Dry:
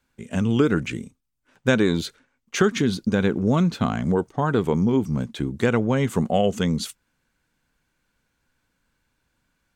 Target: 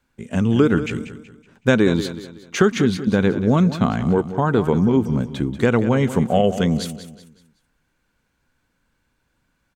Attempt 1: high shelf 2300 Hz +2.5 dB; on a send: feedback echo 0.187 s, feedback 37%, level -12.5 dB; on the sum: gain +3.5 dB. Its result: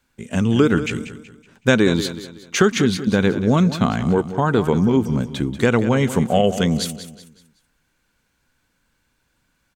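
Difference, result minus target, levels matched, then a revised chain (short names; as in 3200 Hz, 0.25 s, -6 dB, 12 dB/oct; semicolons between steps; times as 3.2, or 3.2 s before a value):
4000 Hz band +4.5 dB
high shelf 2300 Hz -4 dB; on a send: feedback echo 0.187 s, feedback 37%, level -12.5 dB; on the sum: gain +3.5 dB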